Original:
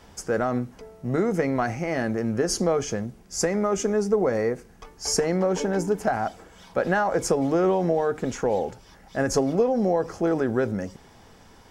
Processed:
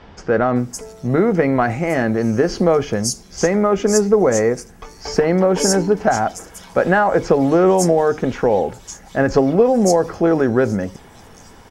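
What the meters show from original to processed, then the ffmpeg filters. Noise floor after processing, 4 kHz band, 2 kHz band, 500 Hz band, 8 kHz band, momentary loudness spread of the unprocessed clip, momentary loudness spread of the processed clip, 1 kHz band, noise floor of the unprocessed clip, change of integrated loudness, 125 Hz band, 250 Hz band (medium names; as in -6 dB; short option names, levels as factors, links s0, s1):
-43 dBFS, +5.5 dB, +8.0 dB, +8.0 dB, +7.0 dB, 10 LU, 10 LU, +8.0 dB, -52 dBFS, +8.0 dB, +8.0 dB, +8.0 dB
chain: -filter_complex "[0:a]acrossover=split=4400[s0][s1];[s1]adelay=560[s2];[s0][s2]amix=inputs=2:normalize=0,volume=2.51"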